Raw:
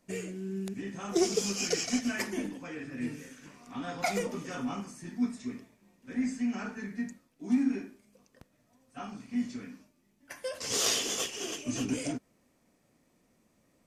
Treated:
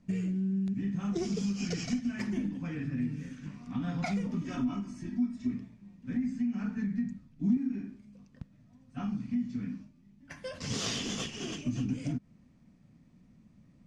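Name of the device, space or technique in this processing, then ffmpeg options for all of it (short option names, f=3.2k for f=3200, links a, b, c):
jukebox: -filter_complex "[0:a]lowpass=5.2k,lowshelf=f=280:t=q:w=1.5:g=13.5,acompressor=threshold=-28dB:ratio=5,asettb=1/sr,asplit=3[a][b][c];[a]atrim=end=4.414[d];[b]atrim=start=4.41:end=5.54,asetpts=PTS-STARTPTS,afade=t=in:d=0.004:c=qsin,afade=t=out:st=1.126:d=0.004:c=qsin,aecho=1:1:3.1:0.72,atrim=end_sample=49833[e];[c]atrim=start=5.536[f];[d][e]acrossfade=d=0.004:c1=hsin:c2=qsin[g];[g][f]acrossfade=d=0.004:c1=qsin:c2=hsin,asettb=1/sr,asplit=3[h][i][j];[h]atrim=end=6.854[k];[i]atrim=start=6.85:end=7.57,asetpts=PTS-STARTPTS,afade=t=in:d=0.004:c=qsin,afade=t=out:st=0.716:d=0.004:c=qsin,asubboost=boost=11:cutoff=220[l];[j]atrim=start=7.566[m];[k][l]acrossfade=d=0.004:c1=hsin:c2=qsin[n];[n][m]acrossfade=d=0.004:c1=qsin:c2=hsin,volume=-1.5dB"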